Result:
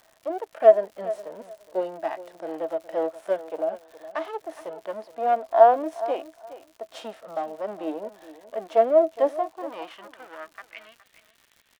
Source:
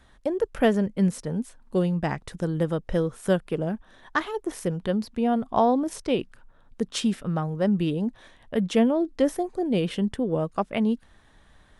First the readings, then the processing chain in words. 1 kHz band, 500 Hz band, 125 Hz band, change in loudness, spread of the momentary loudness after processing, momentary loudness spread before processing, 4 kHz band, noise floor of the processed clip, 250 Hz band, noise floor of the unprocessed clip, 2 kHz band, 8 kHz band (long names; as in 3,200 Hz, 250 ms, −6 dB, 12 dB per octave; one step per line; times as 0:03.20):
+5.0 dB, +4.0 dB, below −25 dB, +1.5 dB, 24 LU, 9 LU, below −10 dB, −63 dBFS, −14.0 dB, −57 dBFS, −5.5 dB, below −10 dB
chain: gain on one half-wave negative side −12 dB
high-pass filter 220 Hz
high-shelf EQ 4,900 Hz −10.5 dB
harmonic and percussive parts rebalanced percussive −10 dB
hollow resonant body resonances 310/650 Hz, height 12 dB, ringing for 95 ms
high-pass filter sweep 640 Hz → 2,500 Hz, 0:09.24–0:10.99
surface crackle 140 per second −44 dBFS
on a send: repeating echo 416 ms, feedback 18%, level −15.5 dB
on the sum: level +2.5 dB